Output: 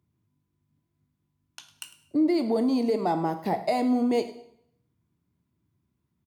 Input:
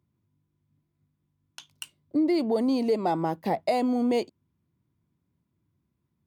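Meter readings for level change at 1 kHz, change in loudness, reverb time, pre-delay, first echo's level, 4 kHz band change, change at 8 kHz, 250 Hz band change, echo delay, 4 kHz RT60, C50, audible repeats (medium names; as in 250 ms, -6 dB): +0.5 dB, +0.5 dB, 0.70 s, 6 ms, -18.5 dB, -0.5 dB, no reading, +1.0 dB, 103 ms, 0.65 s, 11.5 dB, 1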